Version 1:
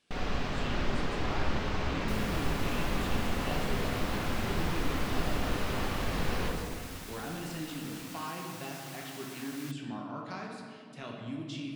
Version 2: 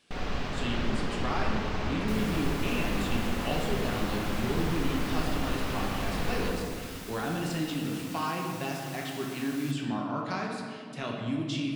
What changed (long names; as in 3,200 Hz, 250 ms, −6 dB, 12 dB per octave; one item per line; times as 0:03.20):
speech +7.5 dB
second sound: send on